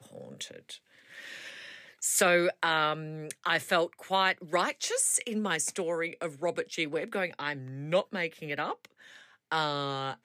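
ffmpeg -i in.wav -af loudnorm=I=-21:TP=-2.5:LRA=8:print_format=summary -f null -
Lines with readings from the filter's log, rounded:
Input Integrated:    -30.3 LUFS
Input True Peak:     -11.7 dBTP
Input LRA:             5.8 LU
Input Threshold:     -41.2 LUFS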